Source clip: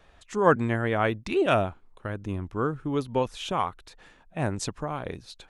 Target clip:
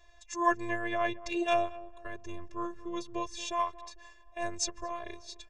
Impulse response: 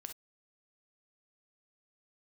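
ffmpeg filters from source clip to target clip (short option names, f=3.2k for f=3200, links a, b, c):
-filter_complex "[0:a]afftfilt=real='hypot(re,im)*cos(PI*b)':imag='0':win_size=512:overlap=0.75,lowpass=f=6.4k:t=q:w=3.3,aecho=1:1:1.8:0.85,asplit=2[a][b];[b]adelay=226,lowpass=f=1.4k:p=1,volume=-17dB,asplit=2[c][d];[d]adelay=226,lowpass=f=1.4k:p=1,volume=0.42,asplit=2[e][f];[f]adelay=226,lowpass=f=1.4k:p=1,volume=0.42,asplit=2[g][h];[h]adelay=226,lowpass=f=1.4k:p=1,volume=0.42[i];[a][c][e][g][i]amix=inputs=5:normalize=0,volume=-4dB"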